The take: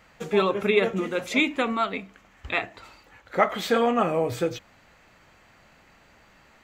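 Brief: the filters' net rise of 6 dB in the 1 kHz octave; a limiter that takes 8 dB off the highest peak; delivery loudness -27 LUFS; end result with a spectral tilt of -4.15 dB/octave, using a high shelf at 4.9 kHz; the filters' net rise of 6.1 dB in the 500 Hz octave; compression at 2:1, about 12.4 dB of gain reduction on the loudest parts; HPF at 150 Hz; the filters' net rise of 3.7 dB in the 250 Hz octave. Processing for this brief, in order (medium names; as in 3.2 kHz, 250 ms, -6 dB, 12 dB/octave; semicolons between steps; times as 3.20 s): high-pass 150 Hz; peaking EQ 250 Hz +3.5 dB; peaking EQ 500 Hz +5 dB; peaking EQ 1 kHz +6 dB; treble shelf 4.9 kHz +8 dB; compression 2:1, threshold -34 dBFS; trim +5.5 dB; peak limiter -15.5 dBFS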